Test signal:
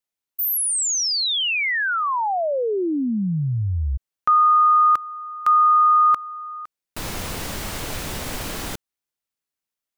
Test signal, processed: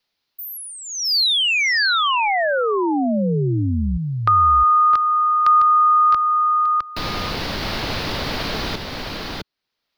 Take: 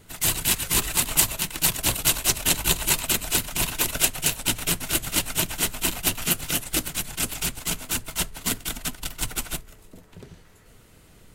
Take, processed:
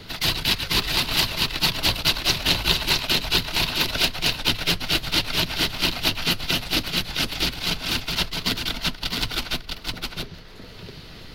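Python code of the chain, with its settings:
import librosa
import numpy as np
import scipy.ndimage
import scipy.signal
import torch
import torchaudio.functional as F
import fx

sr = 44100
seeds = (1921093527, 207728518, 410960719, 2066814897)

y = fx.high_shelf_res(x, sr, hz=6000.0, db=-10.5, q=3.0)
y = y + 10.0 ** (-5.5 / 20.0) * np.pad(y, (int(660 * sr / 1000.0), 0))[:len(y)]
y = fx.band_squash(y, sr, depth_pct=40)
y = F.gain(torch.from_numpy(y), 1.5).numpy()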